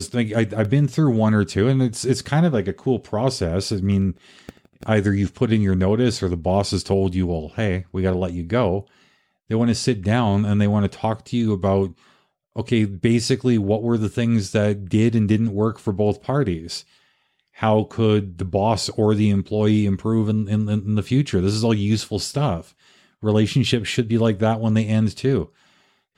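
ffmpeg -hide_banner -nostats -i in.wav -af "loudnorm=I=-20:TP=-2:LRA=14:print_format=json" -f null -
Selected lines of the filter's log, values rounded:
"input_i" : "-20.7",
"input_tp" : "-6.2",
"input_lra" : "2.2",
"input_thresh" : "-31.2",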